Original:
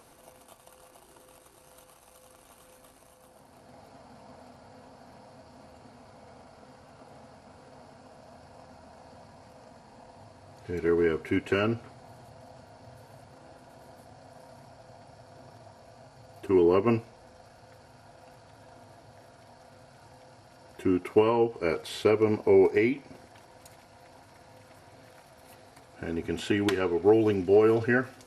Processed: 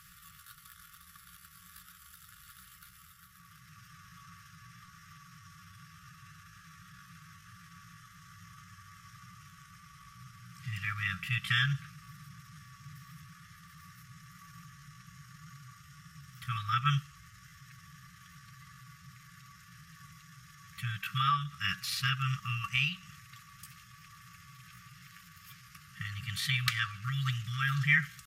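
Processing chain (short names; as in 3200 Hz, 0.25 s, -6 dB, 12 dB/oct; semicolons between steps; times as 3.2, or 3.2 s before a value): FFT band-reject 160–910 Hz; pitch shift +3.5 st; gain +3.5 dB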